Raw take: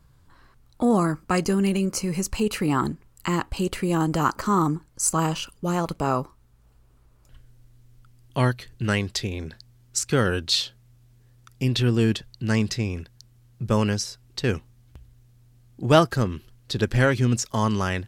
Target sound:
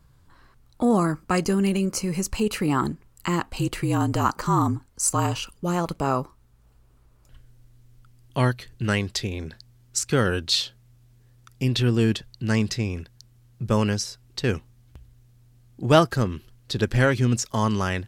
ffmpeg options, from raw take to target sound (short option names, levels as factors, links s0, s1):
-filter_complex "[0:a]asettb=1/sr,asplit=3[s0][s1][s2];[s0]atrim=end=3.434[s3];[s1]atrim=start=3.43:end=5.51,asetpts=PTS-STARTPTS,afade=t=in:d=0.004:c=qsin,afade=t=out:st=2.076:d=0.004:c=qsin,afreqshift=-43[s4];[s2]atrim=start=5.506[s5];[s3][s4]acrossfade=d=0.004:c1=hsin:c2=qsin[s6];[s6][s5]acrossfade=d=0.004:c1=qsin:c2=hsin"